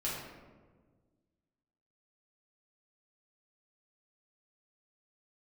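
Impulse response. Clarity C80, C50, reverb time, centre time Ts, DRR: 3.0 dB, 0.5 dB, 1.5 s, 74 ms, -7.5 dB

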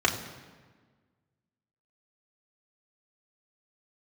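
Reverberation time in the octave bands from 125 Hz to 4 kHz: 1.8 s, 1.8 s, 1.5 s, 1.4 s, 1.3 s, 1.1 s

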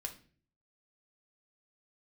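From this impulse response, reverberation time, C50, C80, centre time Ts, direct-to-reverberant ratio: 0.45 s, 12.0 dB, 17.5 dB, 10 ms, 3.5 dB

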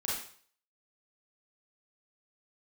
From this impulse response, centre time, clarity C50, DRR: 55 ms, 0.5 dB, -6.5 dB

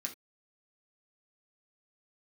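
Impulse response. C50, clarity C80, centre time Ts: 12.5 dB, 21.5 dB, 11 ms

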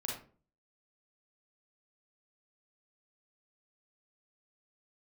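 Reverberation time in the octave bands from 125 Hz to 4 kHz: 0.55 s, 0.50 s, 0.45 s, 0.35 s, 0.30 s, 0.25 s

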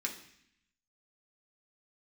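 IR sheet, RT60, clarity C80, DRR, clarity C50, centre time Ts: 0.65 s, 12.5 dB, -1.0 dB, 9.5 dB, 17 ms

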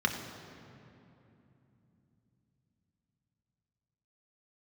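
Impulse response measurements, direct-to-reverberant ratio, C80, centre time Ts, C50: 2.5 dB, 7.5 dB, 45 ms, 6.5 dB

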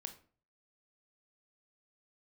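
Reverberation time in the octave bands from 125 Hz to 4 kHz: 0.60 s, 0.50 s, 0.45 s, 0.40 s, 0.35 s, 0.30 s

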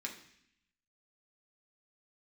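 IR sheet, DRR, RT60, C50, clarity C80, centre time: -1.0 dB, 0.70 s, 9.0 dB, 12.0 dB, 19 ms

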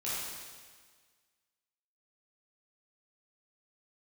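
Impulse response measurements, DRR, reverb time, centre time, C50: -10.0 dB, 1.6 s, 119 ms, -3.5 dB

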